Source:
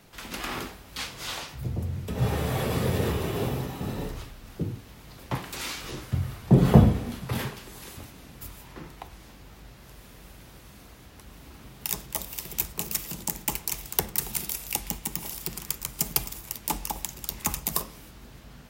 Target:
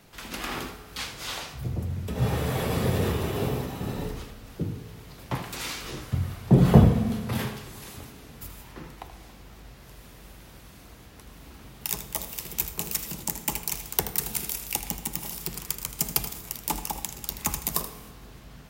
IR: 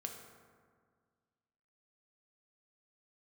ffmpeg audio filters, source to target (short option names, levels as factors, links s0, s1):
-filter_complex "[0:a]asplit=2[s0][s1];[1:a]atrim=start_sample=2205,adelay=79[s2];[s1][s2]afir=irnorm=-1:irlink=0,volume=0.398[s3];[s0][s3]amix=inputs=2:normalize=0"